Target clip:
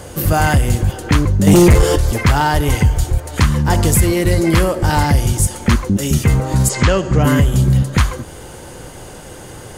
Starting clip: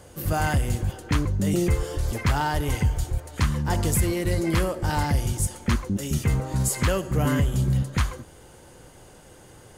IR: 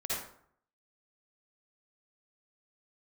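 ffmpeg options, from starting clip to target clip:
-filter_complex "[0:a]asplit=3[a][b][c];[a]afade=t=out:st=6.68:d=0.02[d];[b]lowpass=f=7.1k:w=0.5412,lowpass=f=7.1k:w=1.3066,afade=t=in:st=6.68:d=0.02,afade=t=out:st=7.23:d=0.02[e];[c]afade=t=in:st=7.23:d=0.02[f];[d][e][f]amix=inputs=3:normalize=0,asplit=2[g][h];[h]acompressor=threshold=-32dB:ratio=6,volume=3dB[i];[g][i]amix=inputs=2:normalize=0,asettb=1/sr,asplit=3[j][k][l];[j]atrim=end=1.474[m];[k]atrim=start=1.47:end=1.96,asetpts=PTS-STARTPTS,afade=t=in:d=0.004:c=qsin,afade=t=out:st=0.486:d=0.004:c=qsin,aeval=exprs='0.282*sin(PI/2*1.58*val(0)/0.282)':c=same[n];[l]atrim=start=1.956[o];[m][n]acrossfade=d=0.004:c1=hsin:c2=qsin[p];[p][o]acrossfade=d=0.004:c1=qsin:c2=hsin,volume=7dB"

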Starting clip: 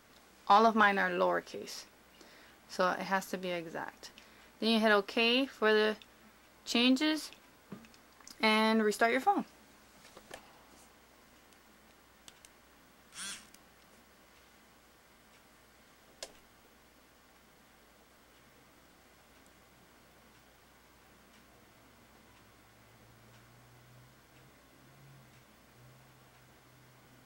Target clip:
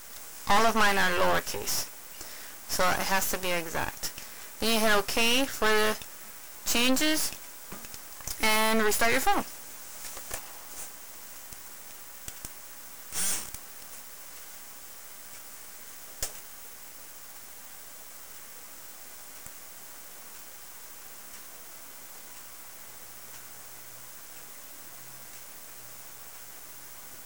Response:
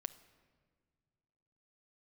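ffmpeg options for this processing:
-filter_complex "[0:a]aexciter=amount=5.3:drive=7.3:freq=5.7k,asplit=2[a][b];[b]highpass=f=720:p=1,volume=22dB,asoftclip=type=tanh:threshold=-11.5dB[c];[a][c]amix=inputs=2:normalize=0,lowpass=f=4.4k:p=1,volume=-6dB,aeval=exprs='max(val(0),0)':c=same,volume=1dB"

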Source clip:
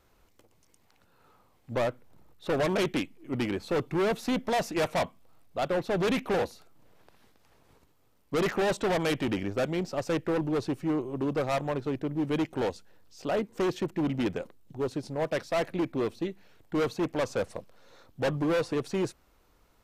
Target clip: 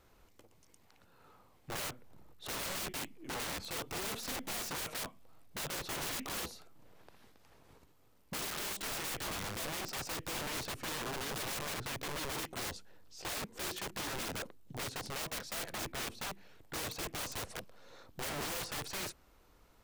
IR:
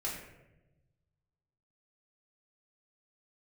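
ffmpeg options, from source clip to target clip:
-af "aeval=exprs='(mod(53.1*val(0)+1,2)-1)/53.1':c=same"

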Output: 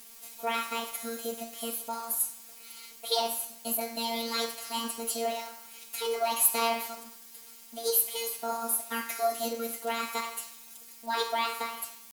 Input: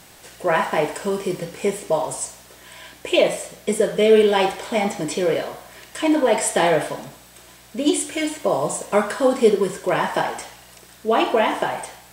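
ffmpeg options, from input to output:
-af "afftfilt=real='hypot(re,im)*cos(PI*b)':imag='0':win_size=1024:overlap=0.75,asetrate=58866,aresample=44100,atempo=0.749154,crystalizer=i=3:c=0,volume=-10dB"

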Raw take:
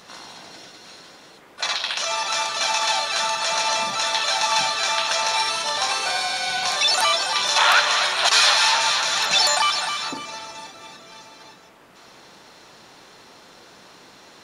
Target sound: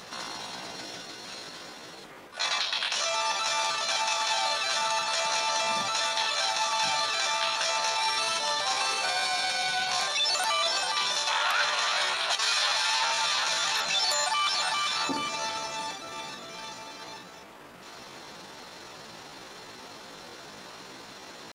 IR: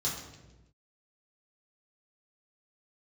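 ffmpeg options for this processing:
-af "atempo=0.67,areverse,acompressor=threshold=-29dB:ratio=4,areverse,volume=3dB"

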